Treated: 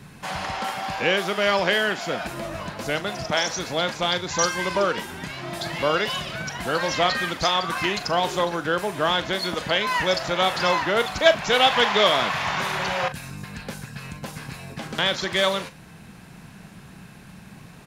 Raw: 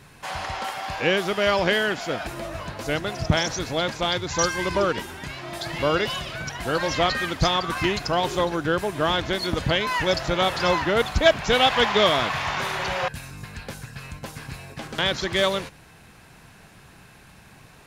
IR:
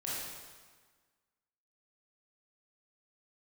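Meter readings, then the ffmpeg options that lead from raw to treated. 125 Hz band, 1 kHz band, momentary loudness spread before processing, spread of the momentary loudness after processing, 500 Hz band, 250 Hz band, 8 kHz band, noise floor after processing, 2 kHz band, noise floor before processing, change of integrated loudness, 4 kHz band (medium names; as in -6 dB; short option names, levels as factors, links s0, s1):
-4.0 dB, +1.0 dB, 17 LU, 16 LU, 0.0 dB, -2.0 dB, +1.5 dB, -45 dBFS, +1.0 dB, -50 dBFS, +0.5 dB, +1.5 dB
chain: -filter_complex "[0:a]equalizer=f=190:t=o:w=0.97:g=10.5,acrossover=split=420[s0][s1];[s0]acompressor=threshold=0.02:ratio=16[s2];[s1]asplit=2[s3][s4];[s4]adelay=40,volume=0.237[s5];[s3][s5]amix=inputs=2:normalize=0[s6];[s2][s6]amix=inputs=2:normalize=0,volume=1.12"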